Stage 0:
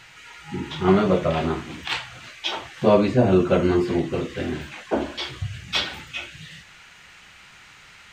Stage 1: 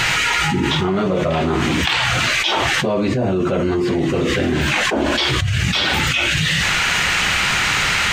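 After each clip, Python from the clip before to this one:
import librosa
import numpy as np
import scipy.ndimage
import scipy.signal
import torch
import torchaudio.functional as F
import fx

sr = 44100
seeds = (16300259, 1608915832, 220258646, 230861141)

y = fx.env_flatten(x, sr, amount_pct=100)
y = F.gain(torch.from_numpy(y), -5.5).numpy()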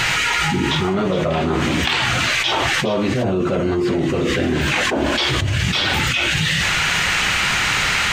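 y = x + 10.0 ** (-13.0 / 20.0) * np.pad(x, (int(415 * sr / 1000.0), 0))[:len(x)]
y = F.gain(torch.from_numpy(y), -1.0).numpy()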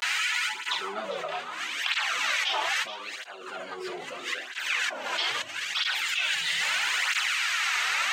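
y = fx.vibrato(x, sr, rate_hz=0.34, depth_cents=70.0)
y = fx.filter_lfo_highpass(y, sr, shape='sine', hz=0.71, low_hz=690.0, high_hz=1500.0, q=0.87)
y = fx.flanger_cancel(y, sr, hz=0.77, depth_ms=3.9)
y = F.gain(torch.from_numpy(y), -5.5).numpy()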